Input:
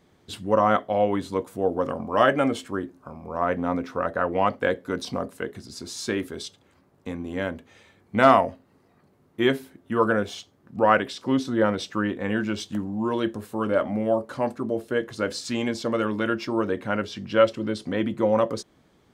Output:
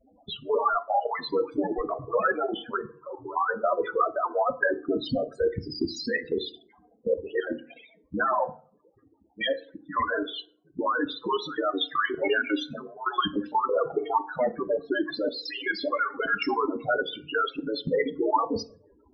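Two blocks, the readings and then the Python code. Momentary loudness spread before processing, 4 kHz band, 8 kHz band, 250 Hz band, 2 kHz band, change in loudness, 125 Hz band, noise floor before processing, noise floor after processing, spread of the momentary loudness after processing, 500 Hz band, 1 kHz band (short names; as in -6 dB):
14 LU, +1.5 dB, under -10 dB, -6.5 dB, +0.5 dB, -3.0 dB, -10.5 dB, -62 dBFS, -63 dBFS, 8 LU, -3.5 dB, -1.5 dB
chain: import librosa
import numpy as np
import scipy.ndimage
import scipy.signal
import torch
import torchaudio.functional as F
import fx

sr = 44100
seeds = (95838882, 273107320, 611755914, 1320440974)

y = fx.hpss_only(x, sr, part='percussive')
y = fx.low_shelf(y, sr, hz=370.0, db=-10.0)
y = fx.rider(y, sr, range_db=3, speed_s=0.5)
y = fx.peak_eq(y, sr, hz=1400.0, db=-5.0, octaves=1.8)
y = fx.fold_sine(y, sr, drive_db=16, ceiling_db=-11.0)
y = scipy.signal.sosfilt(scipy.signal.butter(2, 4000.0, 'lowpass', fs=sr, output='sos'), y)
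y = fx.spec_topn(y, sr, count=8)
y = fx.level_steps(y, sr, step_db=12)
y = fx.rev_fdn(y, sr, rt60_s=0.47, lf_ratio=1.25, hf_ratio=0.6, size_ms=20.0, drr_db=11.0)
y = fx.comb_cascade(y, sr, direction='falling', hz=1.2)
y = y * librosa.db_to_amplitude(4.0)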